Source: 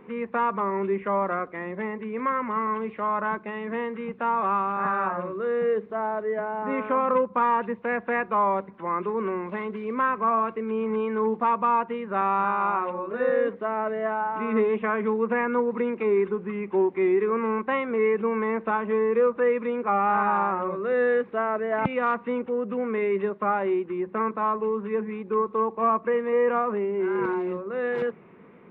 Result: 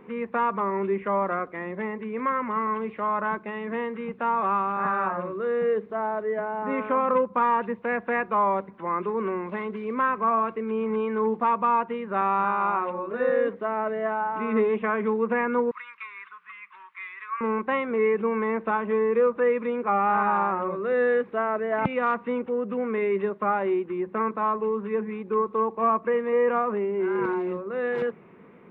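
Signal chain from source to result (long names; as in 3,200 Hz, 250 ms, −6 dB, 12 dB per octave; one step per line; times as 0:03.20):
0:15.71–0:17.41: elliptic high-pass filter 1,100 Hz, stop band 40 dB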